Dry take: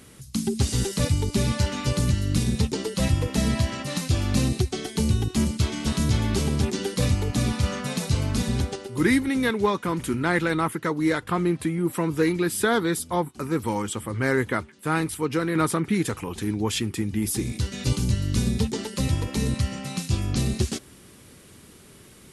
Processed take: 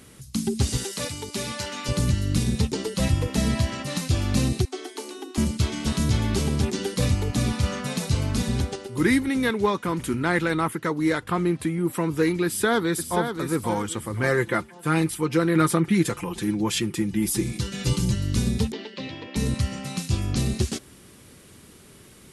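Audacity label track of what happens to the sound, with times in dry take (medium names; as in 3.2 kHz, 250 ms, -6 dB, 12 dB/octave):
0.770000	1.890000	high-pass 580 Hz 6 dB/octave
4.650000	5.380000	rippled Chebyshev high-pass 250 Hz, ripple 6 dB
12.450000	13.350000	echo throw 530 ms, feedback 30%, level -7.5 dB
14.230000	18.150000	comb 5.8 ms, depth 67%
18.720000	19.360000	cabinet simulation 330–3900 Hz, peaks and dips at 480 Hz -5 dB, 890 Hz -6 dB, 1.3 kHz -8 dB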